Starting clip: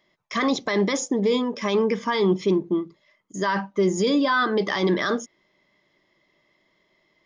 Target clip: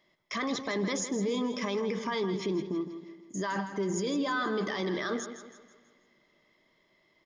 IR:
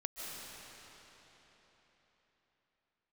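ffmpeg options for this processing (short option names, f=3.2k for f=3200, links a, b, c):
-filter_complex "[0:a]alimiter=limit=-21.5dB:level=0:latency=1:release=33,aecho=1:1:162|324|486|648|810:0.299|0.131|0.0578|0.0254|0.0112,asplit=2[a][b];[1:a]atrim=start_sample=2205,asetrate=61740,aresample=44100[c];[b][c]afir=irnorm=-1:irlink=0,volume=-20dB[d];[a][d]amix=inputs=2:normalize=0,volume=-3dB"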